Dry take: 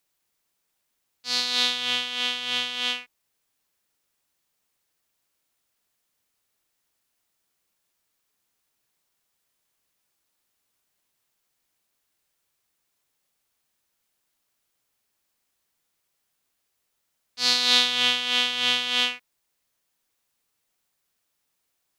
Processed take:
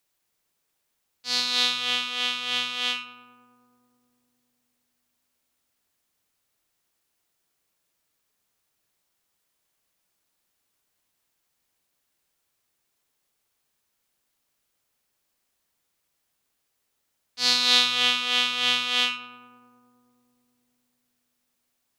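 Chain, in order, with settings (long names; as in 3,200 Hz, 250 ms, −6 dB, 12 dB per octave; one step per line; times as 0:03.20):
feedback echo with a low-pass in the loop 106 ms, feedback 84%, low-pass 1,500 Hz, level −8.5 dB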